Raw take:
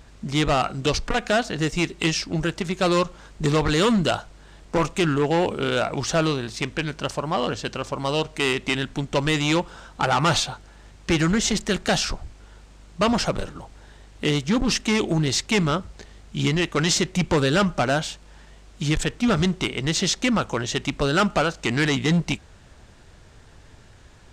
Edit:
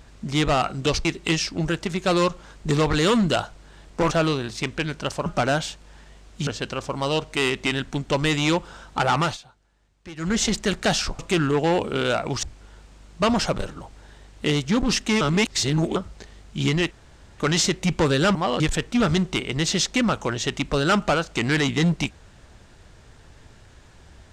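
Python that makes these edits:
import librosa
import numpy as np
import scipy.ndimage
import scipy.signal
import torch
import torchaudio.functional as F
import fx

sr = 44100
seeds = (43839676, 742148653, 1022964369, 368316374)

y = fx.edit(x, sr, fx.cut(start_s=1.05, length_s=0.75),
    fx.move(start_s=4.86, length_s=1.24, to_s=12.22),
    fx.swap(start_s=7.25, length_s=0.25, other_s=17.67, other_length_s=1.21),
    fx.fade_down_up(start_s=10.21, length_s=1.18, db=-18.5, fade_s=0.19),
    fx.reverse_span(start_s=15.0, length_s=0.75),
    fx.insert_room_tone(at_s=16.7, length_s=0.47), tone=tone)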